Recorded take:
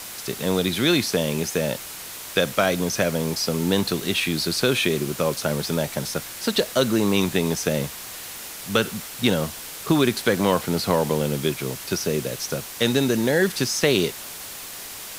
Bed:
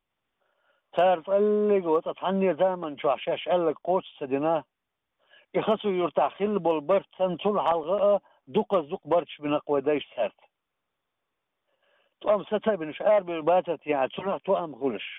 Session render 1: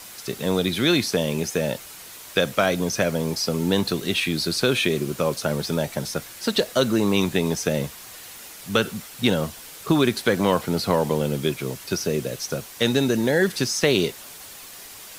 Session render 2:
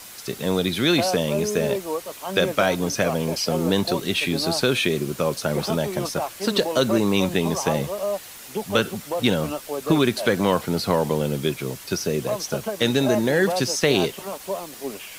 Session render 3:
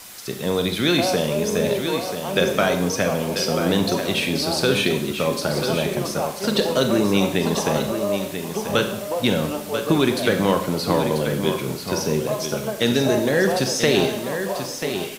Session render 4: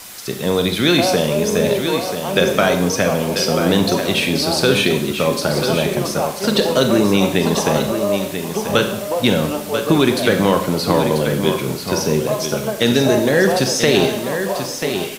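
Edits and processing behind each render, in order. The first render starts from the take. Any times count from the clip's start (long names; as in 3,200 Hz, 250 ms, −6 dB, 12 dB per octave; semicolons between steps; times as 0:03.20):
broadband denoise 6 dB, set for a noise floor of −37 dBFS
mix in bed −4 dB
single-tap delay 989 ms −8 dB; four-comb reverb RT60 0.68 s, combs from 30 ms, DRR 6.5 dB
level +4.5 dB; brickwall limiter −2 dBFS, peak gain reduction 2 dB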